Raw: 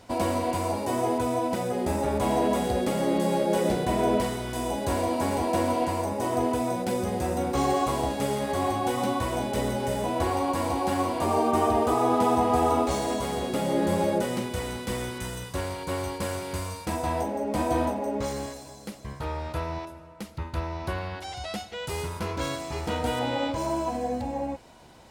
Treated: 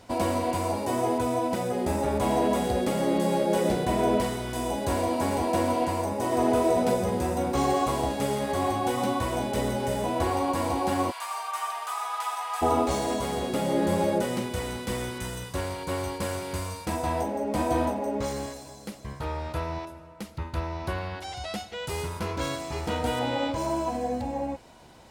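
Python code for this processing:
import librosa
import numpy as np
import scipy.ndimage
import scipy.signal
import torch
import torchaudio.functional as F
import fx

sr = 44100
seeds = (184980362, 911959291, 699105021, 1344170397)

y = fx.reverb_throw(x, sr, start_s=6.25, length_s=0.59, rt60_s=2.4, drr_db=-0.5)
y = fx.highpass(y, sr, hz=1100.0, slope=24, at=(11.1, 12.61), fade=0.02)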